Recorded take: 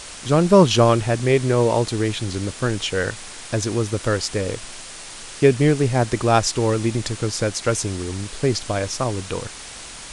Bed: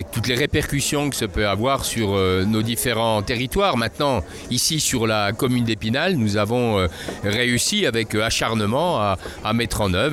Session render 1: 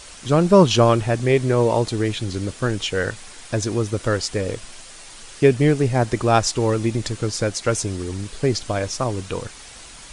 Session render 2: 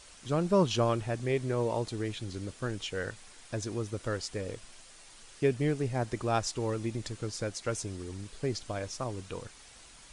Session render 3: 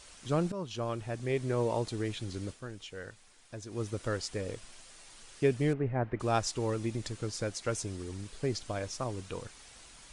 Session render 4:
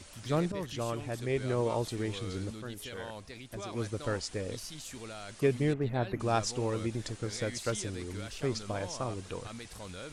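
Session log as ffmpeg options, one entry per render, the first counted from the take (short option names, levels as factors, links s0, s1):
-af "afftdn=nr=6:nf=-37"
-af "volume=0.237"
-filter_complex "[0:a]asettb=1/sr,asplit=3[s0][s1][s2];[s0]atrim=end=5.734[s3];[s1]atrim=start=5.73:end=6.2,asetpts=PTS-STARTPTS,afade=t=in:d=0.004:c=qsin,afade=t=out:st=0.466:d=0.004:c=qsin,lowpass=f=2200:w=0.5412,lowpass=f=2200:w=1.3066[s4];[s2]atrim=start=6.196[s5];[s3][s4]acrossfade=d=0.004:c1=hsin:c2=qsin[s6];[s6][s5]acrossfade=d=0.004:c1=qsin:c2=hsin,asplit=4[s7][s8][s9][s10];[s7]atrim=end=0.52,asetpts=PTS-STARTPTS,afade=t=out:st=0.516:d=0.004:c=hsin:silence=0.149624[s11];[s8]atrim=start=0.52:end=2.65,asetpts=PTS-STARTPTS,afade=t=in:d=1.03:silence=0.149624,afade=t=out:st=1.98:d=0.15:c=qua:silence=0.375837[s12];[s9]atrim=start=2.65:end=3.66,asetpts=PTS-STARTPTS,volume=0.376[s13];[s10]atrim=start=3.66,asetpts=PTS-STARTPTS,afade=t=in:d=0.15:c=qua:silence=0.375837[s14];[s11][s12][s13][s14]concat=n=4:v=0:a=1"
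-filter_complex "[1:a]volume=0.0596[s0];[0:a][s0]amix=inputs=2:normalize=0"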